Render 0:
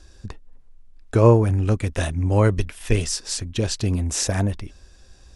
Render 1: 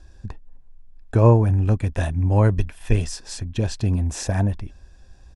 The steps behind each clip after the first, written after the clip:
high-shelf EQ 2,000 Hz −9 dB
comb filter 1.2 ms, depth 31%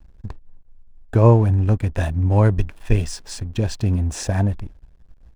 slack as between gear wheels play −40 dBFS
level +1.5 dB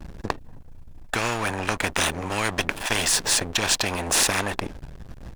pitch vibrato 1 Hz 30 cents
every bin compressed towards the loudest bin 10 to 1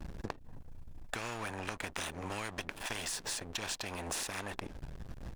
downward compressor 6 to 1, threshold −31 dBFS, peak gain reduction 14.5 dB
level −5 dB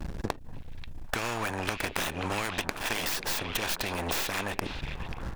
stylus tracing distortion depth 0.24 ms
on a send: echo through a band-pass that steps 536 ms, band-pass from 2,900 Hz, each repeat −1.4 octaves, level −5 dB
on the sum: level +8 dB

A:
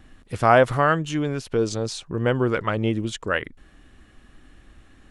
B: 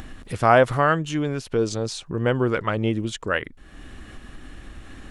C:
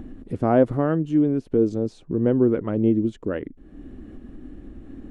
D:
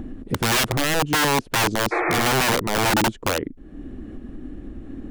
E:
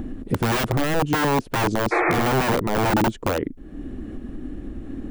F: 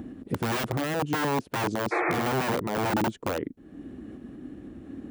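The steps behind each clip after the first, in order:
upward compression, threshold −28 dBFS
drawn EQ curve 130 Hz 0 dB, 280 Hz +10 dB, 1,100 Hz −11 dB, 5,400 Hz −19 dB; level −1.5 dB
wrap-around overflow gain 18.5 dB; healed spectral selection 0:01.94–0:02.20, 280–2,600 Hz after; level +4.5 dB
de-essing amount 85%; high-shelf EQ 7,300 Hz +4.5 dB; level +2.5 dB
high-pass filter 100 Hz 12 dB per octave; level −6 dB

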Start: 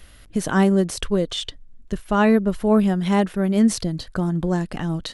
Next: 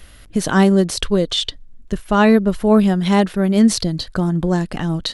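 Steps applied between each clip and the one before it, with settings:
dynamic equaliser 4,200 Hz, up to +6 dB, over −46 dBFS, Q 1.8
level +4 dB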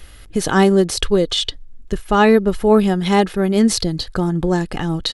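comb filter 2.4 ms, depth 32%
level +1 dB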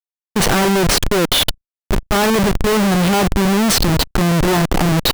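comparator with hysteresis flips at −25 dBFS
output level in coarse steps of 19 dB
level +5 dB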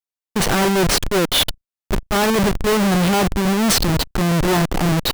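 brickwall limiter −14 dBFS, peak gain reduction 7 dB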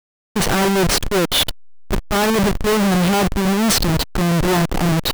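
hold until the input has moved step −32 dBFS

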